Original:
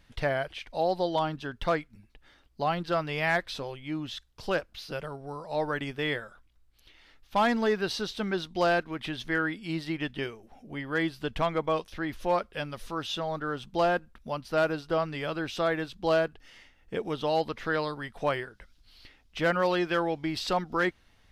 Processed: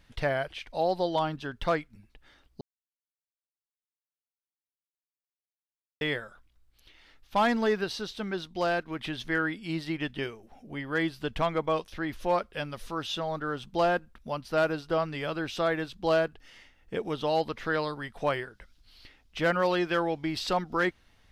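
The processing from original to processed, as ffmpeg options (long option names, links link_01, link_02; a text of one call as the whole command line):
ffmpeg -i in.wav -filter_complex "[0:a]asplit=5[link_01][link_02][link_03][link_04][link_05];[link_01]atrim=end=2.61,asetpts=PTS-STARTPTS,afade=type=out:start_time=2.606:duration=0.004:curve=hsin[link_06];[link_02]atrim=start=2.61:end=6.01,asetpts=PTS-STARTPTS,volume=0[link_07];[link_03]atrim=start=6.01:end=7.842,asetpts=PTS-STARTPTS,afade=type=in:duration=0.004:curve=hsin[link_08];[link_04]atrim=start=7.838:end=8.882,asetpts=PTS-STARTPTS,volume=-3dB[link_09];[link_05]atrim=start=8.878[link_10];[link_06][link_07][link_08]concat=n=3:v=0:a=1[link_11];[link_11][link_09]acrossfade=duration=0.004:curve1=hsin:curve2=hsin[link_12];[link_12][link_10]acrossfade=duration=0.004:curve1=hsin:curve2=hsin" out.wav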